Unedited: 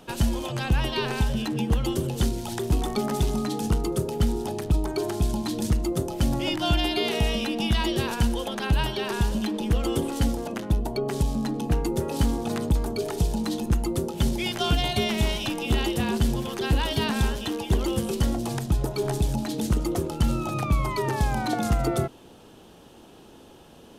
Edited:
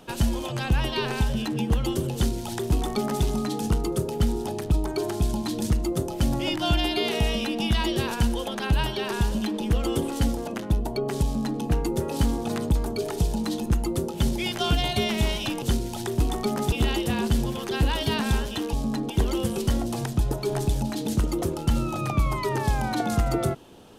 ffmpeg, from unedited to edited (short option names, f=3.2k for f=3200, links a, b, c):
-filter_complex "[0:a]asplit=5[a][b][c][d][e];[a]atrim=end=15.622[f];[b]atrim=start=2.138:end=3.242[g];[c]atrim=start=15.618:end=17.632[h];[d]atrim=start=11.238:end=11.612[i];[e]atrim=start=17.628[j];[f][g]acrossfade=d=0.004:c1=hsin:c2=hsin[k];[k][h]acrossfade=d=0.004:c1=hsin:c2=hsin[l];[l][i]acrossfade=d=0.004:c1=hsin:c2=hsin[m];[m][j]acrossfade=d=0.004:c1=hsin:c2=hsin"